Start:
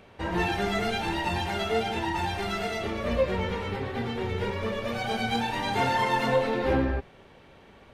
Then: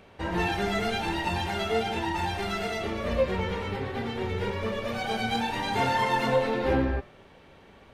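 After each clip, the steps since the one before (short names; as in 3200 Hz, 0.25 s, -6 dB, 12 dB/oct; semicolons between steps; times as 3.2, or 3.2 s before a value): de-hum 118.9 Hz, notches 31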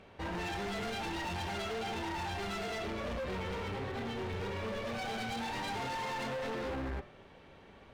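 high shelf 11000 Hz -11.5 dB; limiter -20.5 dBFS, peak gain reduction 7 dB; hard clip -32.5 dBFS, distortion -8 dB; gain -3 dB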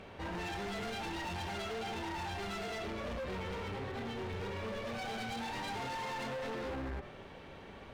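limiter -43 dBFS, peak gain reduction 7.5 dB; gain +5.5 dB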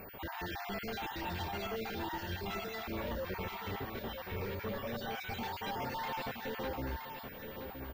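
random spectral dropouts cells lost 38%; on a send: feedback echo 0.97 s, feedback 24%, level -7.5 dB; on the sum: pulse-width modulation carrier 15000 Hz; gain +1.5 dB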